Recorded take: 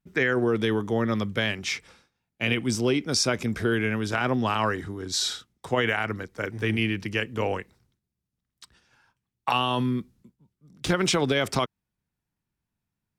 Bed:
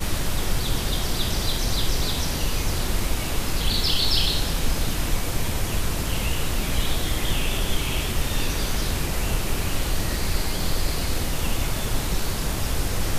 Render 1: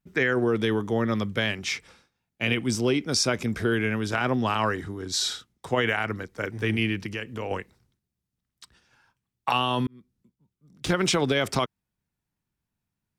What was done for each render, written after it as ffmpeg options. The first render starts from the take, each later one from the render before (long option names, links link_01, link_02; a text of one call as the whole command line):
ffmpeg -i in.wav -filter_complex "[0:a]asettb=1/sr,asplit=3[link_01][link_02][link_03];[link_01]atrim=end=7.064[link_04];[link_02]atrim=start=7.06:end=7.51,asetpts=PTS-STARTPTS,afade=type=in:duration=0.004:curve=qsin,afade=type=out:start_time=0.446:duration=0.004:curve=qsin,acompressor=threshold=-32dB:ratio=2:attack=3.2:release=140:knee=1:detection=peak[link_05];[link_03]atrim=start=7.506[link_06];[link_04][link_05]acrossfade=duration=0.004:curve1=hsin:curve2=qsin[link_07];[link_07][link_06]acrossfade=duration=0.004:curve1=qsin:curve2=hsin,asplit=2[link_08][link_09];[link_08]atrim=end=9.87,asetpts=PTS-STARTPTS,afade=type=out:start_time=9.866:duration=0.004:curve=hsin[link_10];[link_09]atrim=start=9.87,asetpts=PTS-STARTPTS,afade=type=in:duration=1.1[link_11];[link_10][link_11]concat=n=2:v=0:a=1" out.wav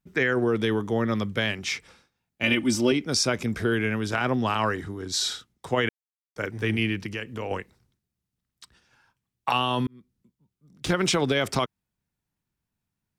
ffmpeg -i in.wav -filter_complex "[0:a]asettb=1/sr,asplit=3[link_01][link_02][link_03];[link_01]atrim=end=2.434[link_04];[link_02]atrim=start=2.43:end=2.92,asetpts=PTS-STARTPTS,afade=type=in:duration=0.004:curve=qsin,afade=type=out:start_time=0.486:duration=0.004:curve=qsin,aecho=1:1:3.4:0.86,atrim=end_sample=21609[link_05];[link_03]atrim=start=2.916[link_06];[link_04][link_05]acrossfade=duration=0.004:curve1=hsin:curve2=qsin[link_07];[link_07][link_06]acrossfade=duration=0.004:curve1=qsin:curve2=hsin,asplit=3[link_08][link_09][link_10];[link_08]atrim=end=5.89,asetpts=PTS-STARTPTS,afade=type=out:start_time=5.886:duration=0.004:curve=hsin[link_11];[link_09]atrim=start=5.89:end=6.36,asetpts=PTS-STARTPTS,volume=0[link_12];[link_10]atrim=start=6.36,asetpts=PTS-STARTPTS,afade=type=in:duration=0.004:curve=hsin[link_13];[link_11][link_12][link_13]concat=n=3:v=0:a=1" out.wav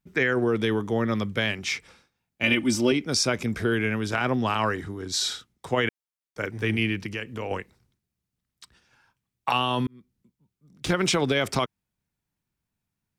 ffmpeg -i in.wav -af "equalizer=frequency=2300:width_type=o:width=0.23:gain=2" out.wav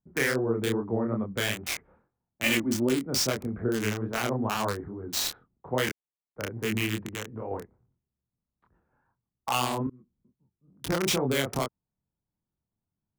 ffmpeg -i in.wav -filter_complex "[0:a]acrossover=split=710|1200[link_01][link_02][link_03];[link_03]acrusher=bits=3:mix=0:aa=0.000001[link_04];[link_01][link_02][link_04]amix=inputs=3:normalize=0,flanger=delay=22.5:depth=7.5:speed=2.4" out.wav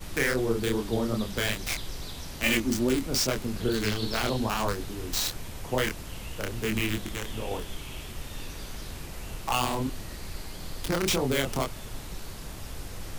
ffmpeg -i in.wav -i bed.wav -filter_complex "[1:a]volume=-14dB[link_01];[0:a][link_01]amix=inputs=2:normalize=0" out.wav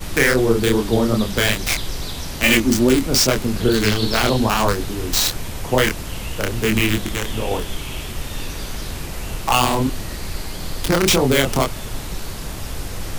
ffmpeg -i in.wav -af "volume=10.5dB,alimiter=limit=-1dB:level=0:latency=1" out.wav